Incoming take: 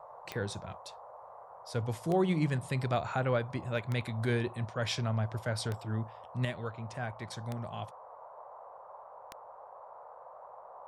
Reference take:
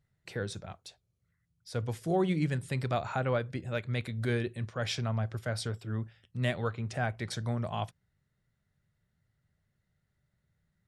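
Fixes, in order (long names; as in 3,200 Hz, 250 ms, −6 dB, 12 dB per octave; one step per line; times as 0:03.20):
click removal
noise reduction from a noise print 27 dB
level 0 dB, from 0:06.45 +6 dB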